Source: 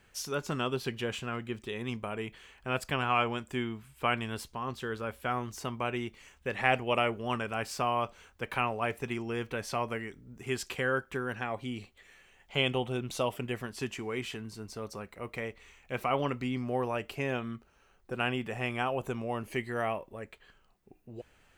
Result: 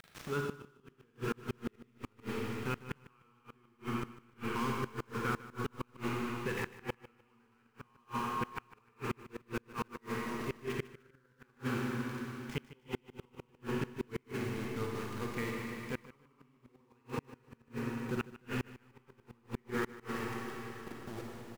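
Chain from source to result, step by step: median filter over 9 samples; Butterworth band-stop 650 Hz, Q 1.5; in parallel at -1 dB: level quantiser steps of 20 dB; on the sum: air absorption 160 m; upward compressor, threshold -34 dBFS; high shelf 2400 Hz -4.5 dB; sample gate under -39 dBFS; Schroeder reverb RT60 3.8 s, DRR -2 dB; flipped gate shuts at -20 dBFS, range -37 dB; on a send: feedback echo 0.151 s, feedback 23%, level -16.5 dB; on the sum: gain -3 dB

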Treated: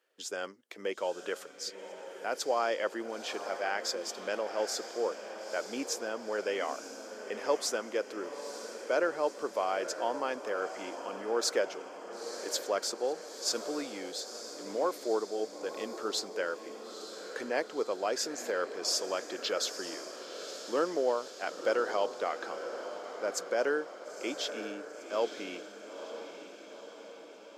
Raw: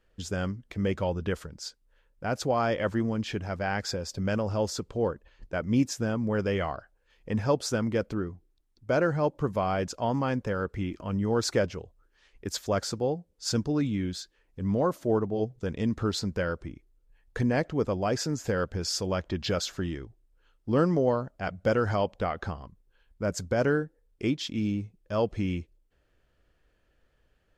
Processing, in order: HPF 360 Hz 24 dB/oct; high shelf 4500 Hz +5.5 dB; diffused feedback echo 0.942 s, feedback 59%, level -10 dB; gain -3 dB

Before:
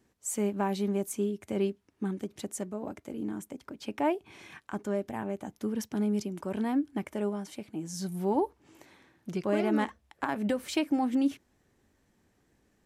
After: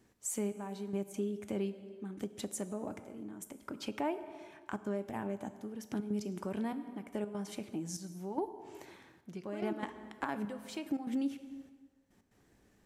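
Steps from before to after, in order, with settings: step gate "xxxxx....x.x" 145 bpm -12 dB; plate-style reverb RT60 1.2 s, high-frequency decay 0.8×, DRR 11.5 dB; compressor 2:1, threshold -40 dBFS, peak gain reduction 10.5 dB; gain +1.5 dB

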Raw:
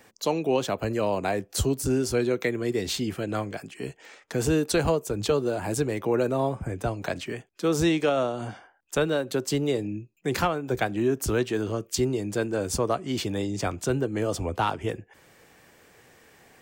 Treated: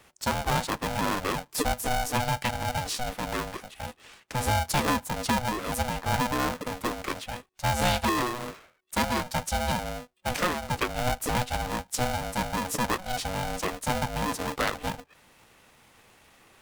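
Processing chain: formant shift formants +3 st; polarity switched at an audio rate 370 Hz; gain -2 dB

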